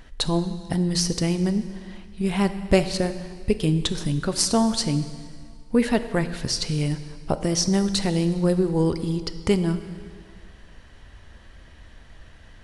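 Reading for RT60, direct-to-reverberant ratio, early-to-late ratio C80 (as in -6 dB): 1.9 s, 10.0 dB, 12.5 dB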